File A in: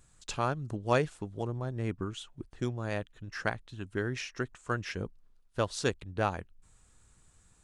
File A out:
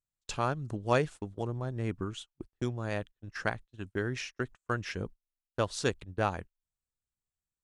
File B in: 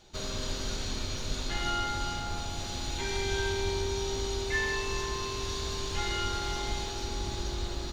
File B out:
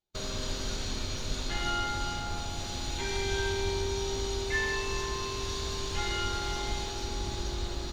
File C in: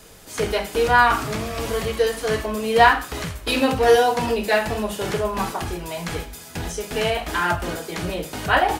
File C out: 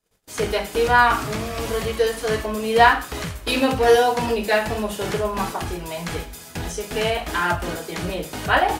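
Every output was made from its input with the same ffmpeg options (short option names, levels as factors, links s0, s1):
-af "agate=range=0.0224:threshold=0.00794:ratio=16:detection=peak"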